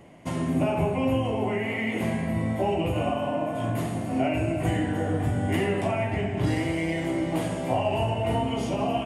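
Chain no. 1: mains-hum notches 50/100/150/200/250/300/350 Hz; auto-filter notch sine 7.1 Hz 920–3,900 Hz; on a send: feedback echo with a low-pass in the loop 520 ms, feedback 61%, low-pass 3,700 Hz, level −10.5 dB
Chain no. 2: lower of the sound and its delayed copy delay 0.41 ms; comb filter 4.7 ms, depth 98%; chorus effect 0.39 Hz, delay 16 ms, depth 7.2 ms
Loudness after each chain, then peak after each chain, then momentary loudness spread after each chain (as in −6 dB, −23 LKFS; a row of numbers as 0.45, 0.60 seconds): −27.0, −28.0 LKFS; −13.0, −12.5 dBFS; 3, 5 LU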